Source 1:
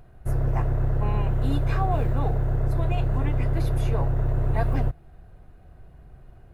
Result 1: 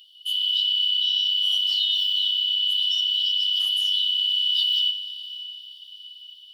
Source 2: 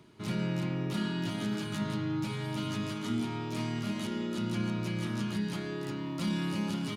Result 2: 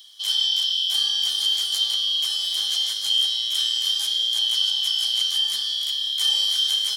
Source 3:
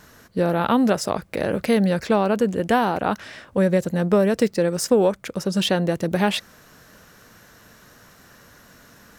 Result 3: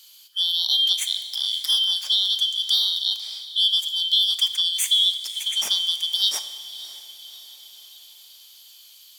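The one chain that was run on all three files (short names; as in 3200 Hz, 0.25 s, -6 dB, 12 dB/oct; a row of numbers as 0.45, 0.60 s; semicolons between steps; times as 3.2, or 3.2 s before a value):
four-band scrambler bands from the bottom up 3412; dynamic EQ 780 Hz, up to +6 dB, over -44 dBFS, Q 1.1; HPF 87 Hz; differentiator; resonator 220 Hz, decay 0.41 s, harmonics odd, mix 60%; diffused feedback echo 0.574 s, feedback 54%, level -16 dB; Schroeder reverb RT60 1.5 s, combs from 26 ms, DRR 11.5 dB; match loudness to -20 LUFS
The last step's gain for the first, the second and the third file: +11.5, +24.0, +10.5 dB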